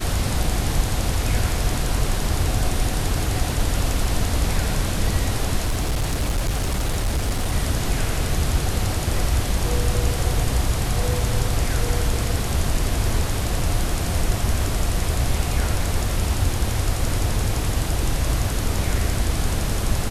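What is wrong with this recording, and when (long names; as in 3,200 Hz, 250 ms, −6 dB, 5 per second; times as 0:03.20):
0:05.65–0:07.52: clipping −17.5 dBFS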